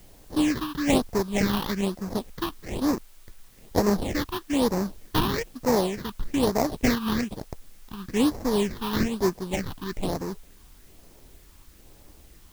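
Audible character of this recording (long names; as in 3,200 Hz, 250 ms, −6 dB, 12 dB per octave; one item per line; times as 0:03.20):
aliases and images of a low sample rate 1,400 Hz, jitter 20%
phaser sweep stages 6, 1.1 Hz, lowest notch 540–3,100 Hz
a quantiser's noise floor 10 bits, dither triangular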